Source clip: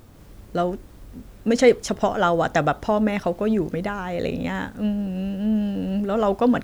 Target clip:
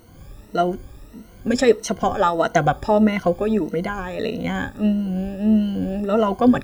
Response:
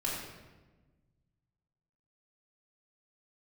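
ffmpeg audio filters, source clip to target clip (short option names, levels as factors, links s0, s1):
-af "afftfilt=real='re*pow(10,16/40*sin(2*PI*(1.9*log(max(b,1)*sr/1024/100)/log(2)-(1.6)*(pts-256)/sr)))':imag='im*pow(10,16/40*sin(2*PI*(1.9*log(max(b,1)*sr/1024/100)/log(2)-(1.6)*(pts-256)/sr)))':win_size=1024:overlap=0.75,tremolo=f=140:d=0.182"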